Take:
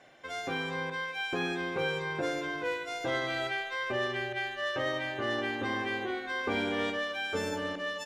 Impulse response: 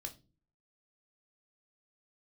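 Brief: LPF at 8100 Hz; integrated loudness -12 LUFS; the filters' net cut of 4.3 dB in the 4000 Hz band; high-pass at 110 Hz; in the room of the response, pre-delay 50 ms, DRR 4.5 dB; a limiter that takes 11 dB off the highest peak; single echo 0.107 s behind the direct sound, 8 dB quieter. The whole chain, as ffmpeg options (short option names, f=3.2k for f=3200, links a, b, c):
-filter_complex "[0:a]highpass=110,lowpass=8.1k,equalizer=f=4k:t=o:g=-6,alimiter=level_in=5.5dB:limit=-24dB:level=0:latency=1,volume=-5.5dB,aecho=1:1:107:0.398,asplit=2[a][b];[1:a]atrim=start_sample=2205,adelay=50[c];[b][c]afir=irnorm=-1:irlink=0,volume=-1dB[d];[a][d]amix=inputs=2:normalize=0,volume=23.5dB"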